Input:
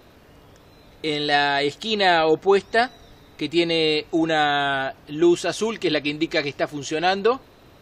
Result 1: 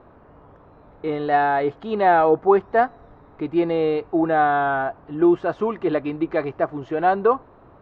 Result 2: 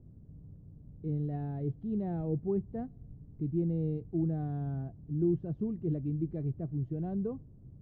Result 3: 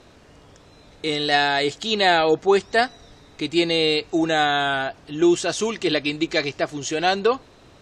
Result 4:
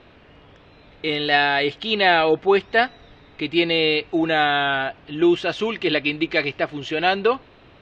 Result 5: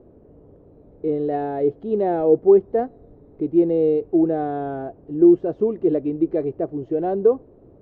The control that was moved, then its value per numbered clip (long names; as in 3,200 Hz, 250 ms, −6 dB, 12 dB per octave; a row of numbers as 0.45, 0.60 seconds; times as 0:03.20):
low-pass with resonance, frequency: 1,100, 150, 7,700, 2,900, 440 Hertz